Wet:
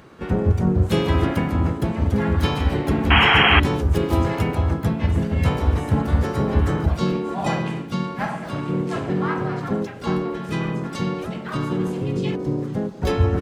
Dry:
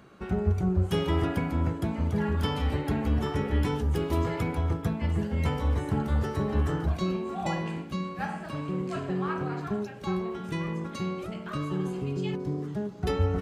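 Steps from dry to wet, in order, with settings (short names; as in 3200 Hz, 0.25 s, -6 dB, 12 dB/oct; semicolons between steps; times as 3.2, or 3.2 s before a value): harmoniser -4 st -6 dB, +4 st -7 dB; painted sound noise, 3.1–3.6, 670–3300 Hz -21 dBFS; gain +5.5 dB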